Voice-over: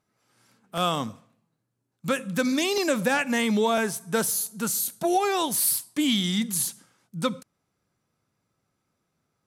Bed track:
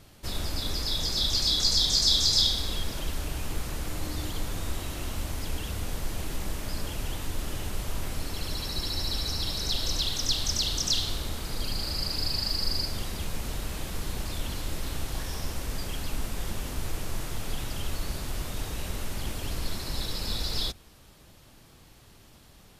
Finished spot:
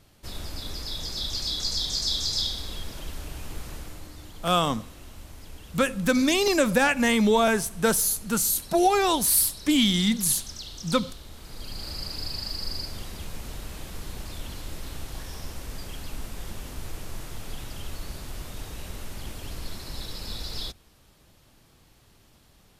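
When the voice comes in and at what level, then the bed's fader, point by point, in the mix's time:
3.70 s, +2.5 dB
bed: 3.75 s -4.5 dB
4.14 s -11.5 dB
11.27 s -11.5 dB
11.88 s -4 dB

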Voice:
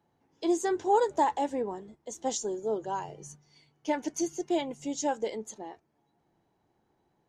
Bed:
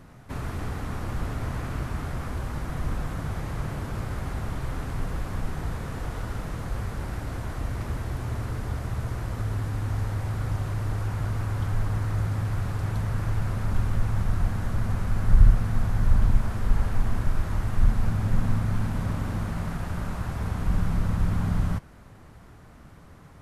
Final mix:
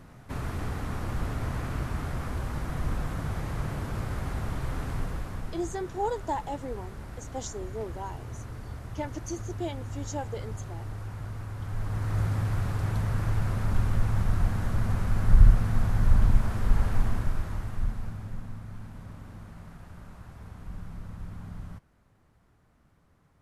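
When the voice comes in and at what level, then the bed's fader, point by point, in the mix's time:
5.10 s, -5.5 dB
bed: 4.94 s -1 dB
5.69 s -9 dB
11.58 s -9 dB
12.20 s -0.5 dB
17.00 s -0.5 dB
18.51 s -15.5 dB

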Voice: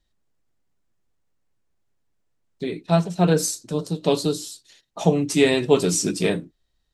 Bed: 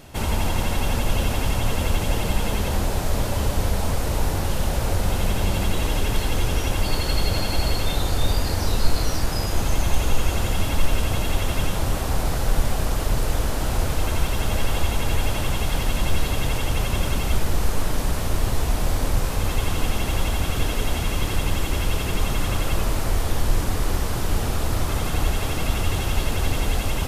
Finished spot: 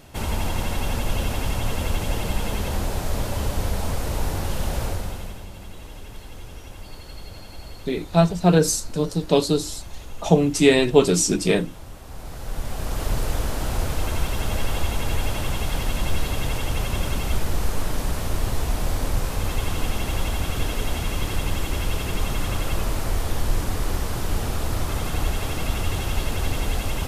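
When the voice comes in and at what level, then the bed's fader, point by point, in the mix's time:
5.25 s, +2.0 dB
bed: 4.83 s -2.5 dB
5.48 s -17 dB
12.01 s -17 dB
13.05 s -2 dB

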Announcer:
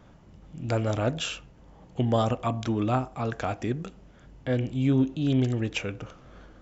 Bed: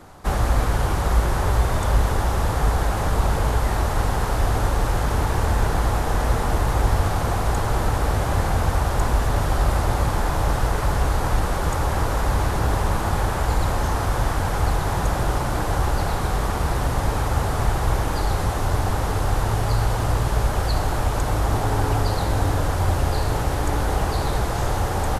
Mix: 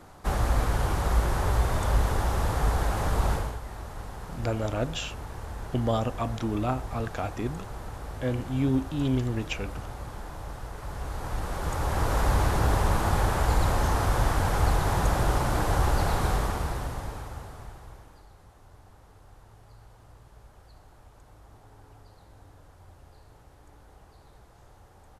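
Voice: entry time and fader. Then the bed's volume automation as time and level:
3.75 s, -2.5 dB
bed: 3.33 s -5 dB
3.60 s -17.5 dB
10.72 s -17.5 dB
12.19 s -2.5 dB
16.30 s -2.5 dB
18.31 s -31.5 dB

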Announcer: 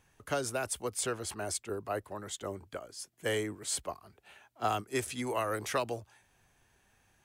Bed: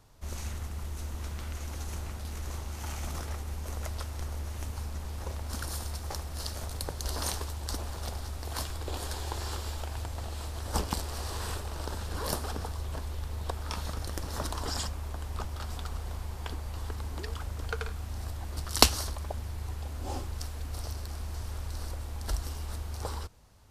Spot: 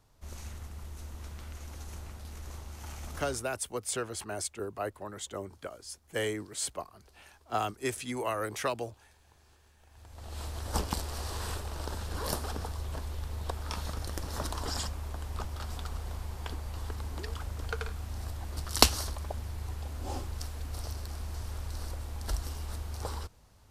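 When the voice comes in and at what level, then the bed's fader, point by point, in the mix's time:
2.90 s, 0.0 dB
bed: 3.29 s -6 dB
3.57 s -28.5 dB
9.77 s -28.5 dB
10.39 s -1 dB

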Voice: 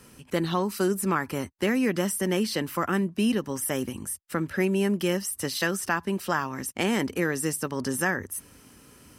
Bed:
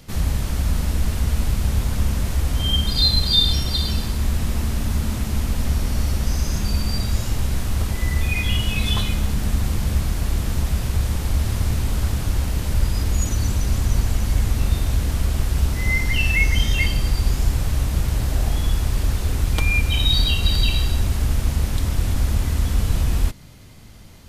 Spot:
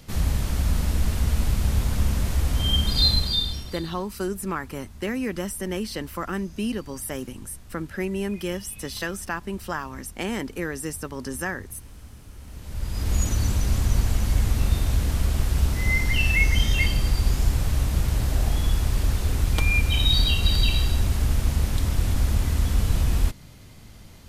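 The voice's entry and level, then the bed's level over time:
3.40 s, -3.5 dB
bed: 3.11 s -2 dB
4.08 s -23 dB
12.35 s -23 dB
13.14 s -2 dB

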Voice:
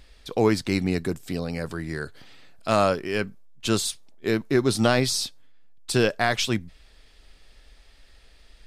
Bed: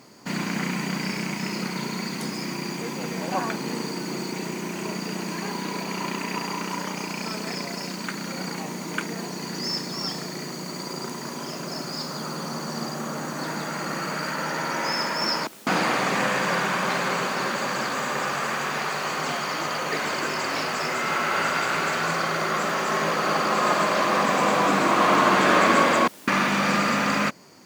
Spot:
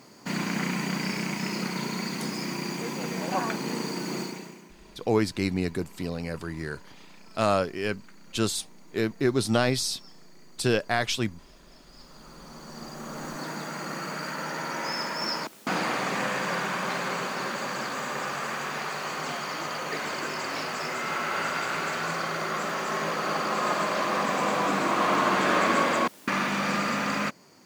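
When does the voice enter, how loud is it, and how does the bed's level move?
4.70 s, -3.0 dB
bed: 4.21 s -1.5 dB
4.74 s -23 dB
11.80 s -23 dB
13.26 s -5 dB

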